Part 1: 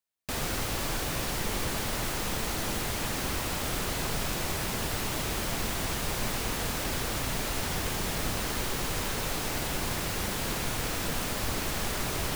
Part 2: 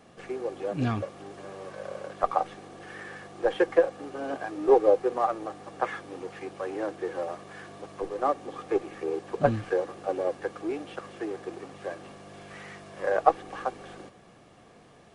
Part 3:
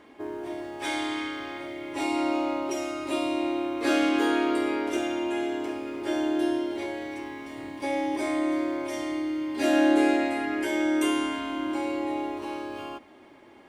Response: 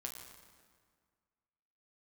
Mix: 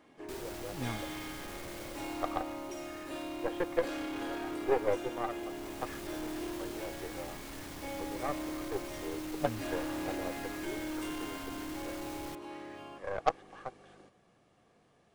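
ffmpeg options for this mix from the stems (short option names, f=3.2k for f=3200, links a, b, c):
-filter_complex "[0:a]asoftclip=type=tanh:threshold=-30dB,volume=-4dB,afade=t=out:st=1.84:d=0.61:silence=0.398107,afade=t=in:st=5.39:d=0.53:silence=0.421697[a];[1:a]aeval=exprs='0.631*(cos(1*acos(clip(val(0)/0.631,-1,1)))-cos(1*PI/2))+0.0794*(cos(3*acos(clip(val(0)/0.631,-1,1)))-cos(3*PI/2))+0.0398*(cos(6*acos(clip(val(0)/0.631,-1,1)))-cos(6*PI/2))+0.0112*(cos(7*acos(clip(val(0)/0.631,-1,1)))-cos(7*PI/2))+0.0562*(cos(8*acos(clip(val(0)/0.631,-1,1)))-cos(8*PI/2))':c=same,volume=-6.5dB[b];[2:a]asoftclip=type=tanh:threshold=-25dB,volume=-10dB[c];[a][b][c]amix=inputs=3:normalize=0"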